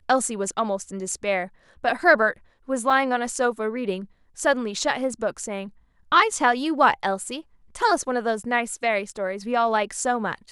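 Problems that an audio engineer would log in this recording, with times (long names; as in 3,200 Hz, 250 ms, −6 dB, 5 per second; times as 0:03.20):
0:02.90: drop-out 3.8 ms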